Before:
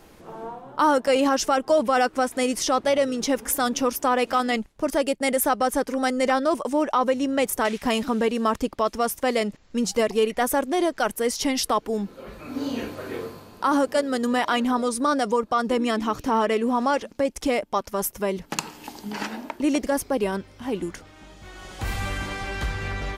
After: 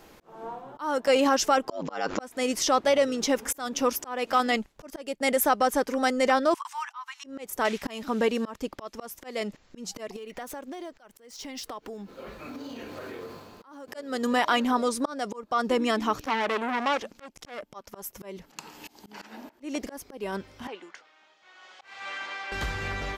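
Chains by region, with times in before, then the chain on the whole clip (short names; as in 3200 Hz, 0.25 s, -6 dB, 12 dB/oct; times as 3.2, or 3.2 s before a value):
1.69–2.2 brick-wall FIR low-pass 7500 Hz + ring modulator 50 Hz + fast leveller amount 70%
6.54–7.24 steep high-pass 910 Hz 72 dB/oct + high shelf 6600 Hz -4.5 dB
10.16–13.88 median filter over 3 samples + compressor 10:1, threshold -33 dBFS
16.21–17.7 upward compressor, threshold -39 dBFS + core saturation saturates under 1600 Hz
20.67–22.52 Bessel high-pass 940 Hz + air absorption 130 m + three-band expander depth 40%
whole clip: low shelf 250 Hz -6 dB; auto swell 0.325 s; bell 9400 Hz -8.5 dB 0.21 oct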